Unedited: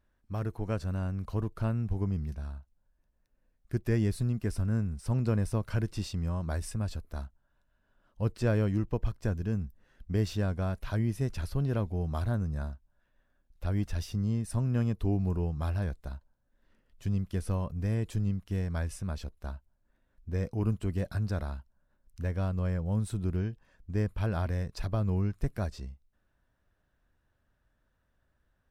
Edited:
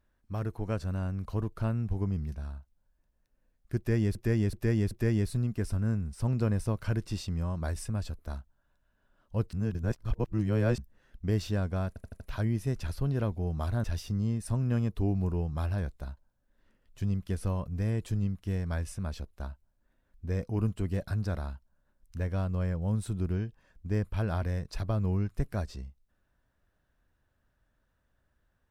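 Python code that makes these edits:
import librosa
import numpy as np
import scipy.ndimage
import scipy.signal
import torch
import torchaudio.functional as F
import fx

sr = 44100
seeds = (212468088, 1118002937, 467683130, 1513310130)

y = fx.edit(x, sr, fx.repeat(start_s=3.77, length_s=0.38, count=4),
    fx.reverse_span(start_s=8.39, length_s=1.25),
    fx.stutter(start_s=10.74, slice_s=0.08, count=5),
    fx.cut(start_s=12.38, length_s=1.5), tone=tone)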